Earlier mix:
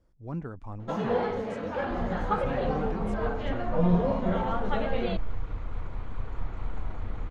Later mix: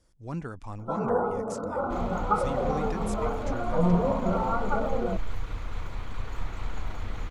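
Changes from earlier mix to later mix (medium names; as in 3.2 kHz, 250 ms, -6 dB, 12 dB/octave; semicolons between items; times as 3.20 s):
first sound: add brick-wall FIR low-pass 1.5 kHz; master: remove low-pass 1 kHz 6 dB/octave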